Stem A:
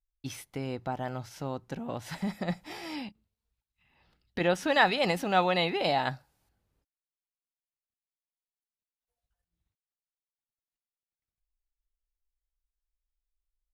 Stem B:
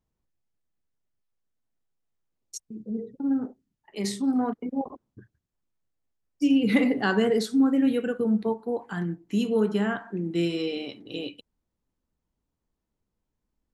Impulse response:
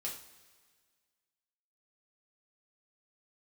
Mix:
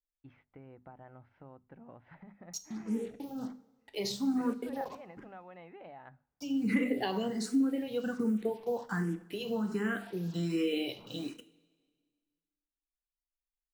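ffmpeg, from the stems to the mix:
-filter_complex "[0:a]lowpass=f=2.1k:w=0.5412,lowpass=f=2.1k:w=1.3066,acompressor=threshold=-34dB:ratio=5,volume=-13.5dB[a];[1:a]acrusher=bits=7:mix=0:aa=0.5,acompressor=threshold=-25dB:ratio=6,asplit=2[b][c];[c]afreqshift=1.3[d];[b][d]amix=inputs=2:normalize=1,volume=-1.5dB,asplit=2[e][f];[f]volume=-6dB[g];[2:a]atrim=start_sample=2205[h];[g][h]afir=irnorm=-1:irlink=0[i];[a][e][i]amix=inputs=3:normalize=0,bandreject=f=50:t=h:w=6,bandreject=f=100:t=h:w=6,bandreject=f=150:t=h:w=6,bandreject=f=200:t=h:w=6,bandreject=f=250:t=h:w=6"

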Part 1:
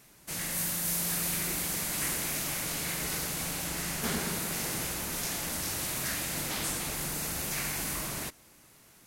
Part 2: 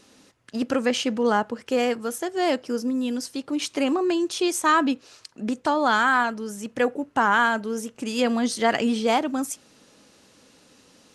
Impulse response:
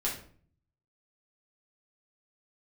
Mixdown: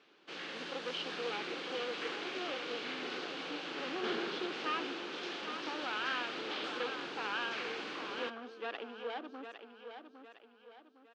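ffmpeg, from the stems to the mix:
-filter_complex "[0:a]aemphasis=mode=reproduction:type=bsi,volume=0.5dB[a];[1:a]afwtdn=0.0282,aeval=exprs='clip(val(0),-1,0.0473)':c=same,volume=-11.5dB,asplit=2[b][c];[c]volume=-8.5dB,aecho=0:1:808|1616|2424|3232|4040|4848:1|0.41|0.168|0.0689|0.0283|0.0116[d];[a][b][d]amix=inputs=3:normalize=0,highpass=f=360:w=0.5412,highpass=f=360:w=1.3066,equalizer=f=640:t=q:w=4:g=-9,equalizer=f=940:t=q:w=4:g=-6,equalizer=f=2k:t=q:w=4:g=-7,equalizer=f=3.1k:t=q:w=4:g=4,lowpass=f=4.2k:w=0.5412,lowpass=f=4.2k:w=1.3066"

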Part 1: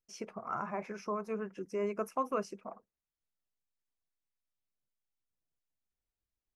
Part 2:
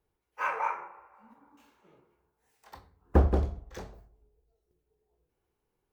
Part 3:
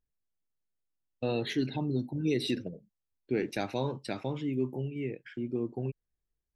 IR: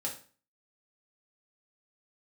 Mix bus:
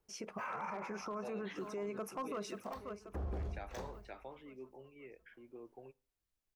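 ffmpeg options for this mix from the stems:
-filter_complex "[0:a]asoftclip=type=hard:threshold=-26.5dB,volume=1.5dB,asplit=2[a][b];[b]volume=-14.5dB[c];[1:a]volume=-1dB[d];[2:a]acrossover=split=460 2800:gain=0.0891 1 0.0708[e][f][g];[e][f][g]amix=inputs=3:normalize=0,volume=-9.5dB,asplit=2[h][i];[i]volume=-21.5dB[j];[3:a]atrim=start_sample=2205[k];[j][k]afir=irnorm=-1:irlink=0[l];[c]aecho=0:1:534|1068|1602|2136|2670|3204:1|0.46|0.212|0.0973|0.0448|0.0206[m];[a][d][h][l][m]amix=inputs=5:normalize=0,alimiter=level_in=9.5dB:limit=-24dB:level=0:latency=1:release=48,volume=-9.5dB"

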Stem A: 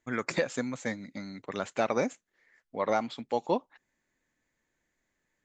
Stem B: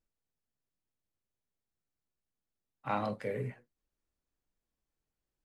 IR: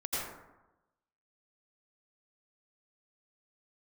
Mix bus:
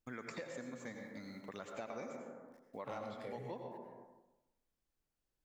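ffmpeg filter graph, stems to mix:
-filter_complex "[0:a]agate=range=-33dB:threshold=-57dB:ratio=3:detection=peak,acrusher=bits=10:mix=0:aa=0.000001,volume=-8.5dB,asplit=2[a][b];[b]volume=-6.5dB[c];[1:a]asoftclip=type=hard:threshold=-27.5dB,volume=-2.5dB,asplit=2[d][e];[e]volume=-11.5dB[f];[2:a]atrim=start_sample=2205[g];[c][f]amix=inputs=2:normalize=0[h];[h][g]afir=irnorm=-1:irlink=0[i];[a][d][i]amix=inputs=3:normalize=0,acompressor=threshold=-46dB:ratio=3"

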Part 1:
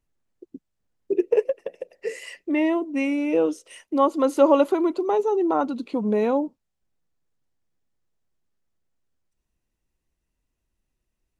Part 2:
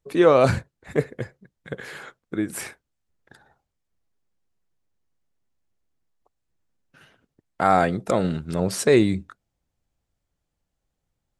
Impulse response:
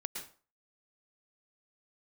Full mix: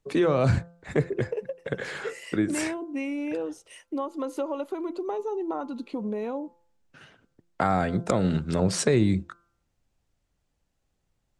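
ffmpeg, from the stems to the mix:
-filter_complex "[0:a]acompressor=threshold=-24dB:ratio=6,volume=-3.5dB[a];[1:a]acrossover=split=200[b][c];[c]acompressor=threshold=-24dB:ratio=6[d];[b][d]amix=inputs=2:normalize=0,lowpass=f=8.8k:w=0.5412,lowpass=f=8.8k:w=1.3066,volume=2.5dB[e];[a][e]amix=inputs=2:normalize=0,bandreject=f=171.4:t=h:w=4,bandreject=f=342.8:t=h:w=4,bandreject=f=514.2:t=h:w=4,bandreject=f=685.6:t=h:w=4,bandreject=f=857:t=h:w=4,bandreject=f=1.0284k:t=h:w=4,bandreject=f=1.1998k:t=h:w=4,bandreject=f=1.3712k:t=h:w=4,bandreject=f=1.5426k:t=h:w=4"

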